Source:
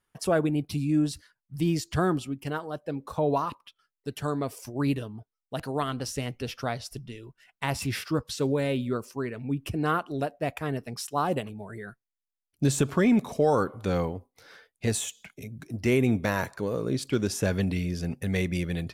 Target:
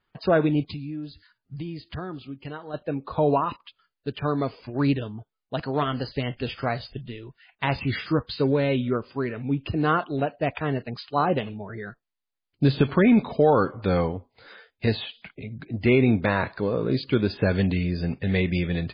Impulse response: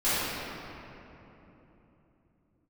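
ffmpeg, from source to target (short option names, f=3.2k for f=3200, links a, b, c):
-filter_complex "[0:a]asettb=1/sr,asplit=3[a][b][c];[a]atrim=end=0.704[d];[b]atrim=start=0.7:end=2.74,asetpts=PTS-STARTPTS,afade=t=in:d=0.004:c=qsin,afade=t=out:st=2.036:d=0.004:c=qsin,acompressor=threshold=-38dB:ratio=4[e];[c]atrim=start=2.736[f];[d][e]acrossfade=d=0.004:c1=hsin:c2=qsin[g];[g][f]acrossfade=d=0.004:c1=qsin:c2=hsin,volume=4.5dB" -ar 11025 -c:a libmp3lame -b:a 16k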